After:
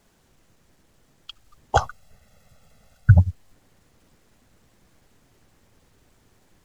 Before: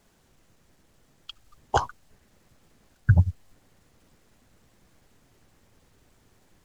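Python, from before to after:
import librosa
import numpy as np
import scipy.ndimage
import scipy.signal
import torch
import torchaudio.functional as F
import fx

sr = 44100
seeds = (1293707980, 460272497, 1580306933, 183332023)

y = fx.comb(x, sr, ms=1.5, depth=0.85, at=(1.75, 3.19))
y = F.gain(torch.from_numpy(y), 1.5).numpy()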